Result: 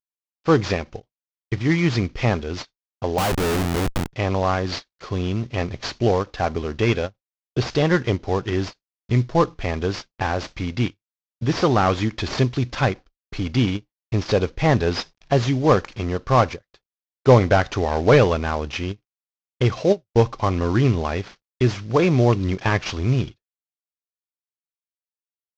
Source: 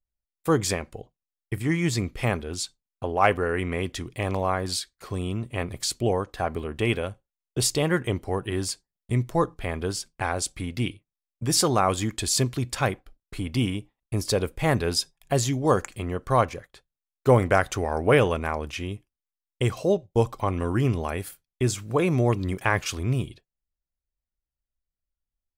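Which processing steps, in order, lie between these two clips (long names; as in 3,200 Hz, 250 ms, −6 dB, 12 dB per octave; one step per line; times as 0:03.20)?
variable-slope delta modulation 32 kbit/s
0:03.18–0:04.13: comparator with hysteresis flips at −29 dBFS
every ending faded ahead of time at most 500 dB per second
level +5.5 dB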